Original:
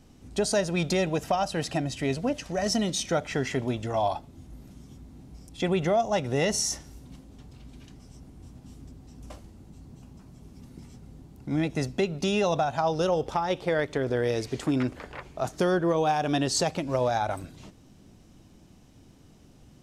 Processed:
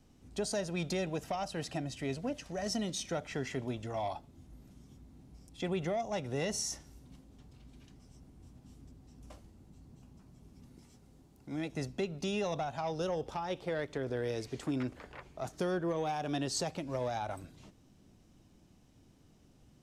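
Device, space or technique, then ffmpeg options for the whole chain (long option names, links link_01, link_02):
one-band saturation: -filter_complex "[0:a]asettb=1/sr,asplit=3[link_01][link_02][link_03];[link_01]atrim=end=10.774[link_04];[link_02]atrim=start=10.77:end=11.72,asetpts=PTS-STARTPTS,afade=type=in:duration=0.004:curve=qsin,afade=type=out:start_time=0.946:duration=0.004:curve=qsin,bass=frequency=250:gain=-6,treble=frequency=4000:gain=3[link_05];[link_03]atrim=start=11.716[link_06];[link_04][link_05]acrossfade=duration=0.004:curve1=hsin:curve2=qsin[link_07];[link_07][link_06]acrossfade=duration=0.004:curve1=qsin:curve2=hsin,acrossover=split=410|3200[link_08][link_09][link_10];[link_09]asoftclip=type=tanh:threshold=-22dB[link_11];[link_08][link_11][link_10]amix=inputs=3:normalize=0,volume=-8.5dB"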